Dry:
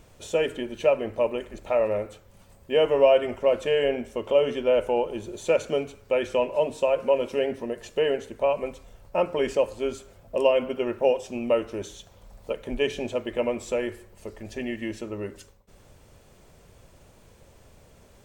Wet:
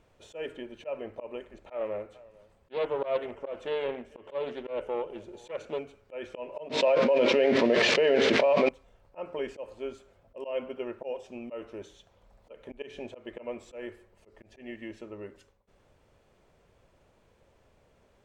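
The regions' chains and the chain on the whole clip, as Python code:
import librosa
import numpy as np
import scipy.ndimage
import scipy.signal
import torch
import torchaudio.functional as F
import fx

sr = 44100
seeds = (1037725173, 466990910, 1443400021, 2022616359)

y = fx.chain(x, sr, fx.echo_single(ms=444, db=-23.0),
    fx.doppler_dist(depth_ms=0.23), at=(1.55, 5.79))
y = fx.chain(y, sr, fx.crossing_spikes(level_db=-27.5),
    fx.cabinet(low_hz=130.0, low_slope=24, high_hz=4600.0, hz=(240.0, 590.0, 2200.0), db=(3, 4, 5)),
    fx.env_flatten(amount_pct=100), at=(6.69, 8.69))
y = fx.high_shelf(y, sr, hz=8100.0, db=-9.0)
y = fx.auto_swell(y, sr, attack_ms=132.0)
y = fx.bass_treble(y, sr, bass_db=-5, treble_db=-6)
y = y * librosa.db_to_amplitude(-7.5)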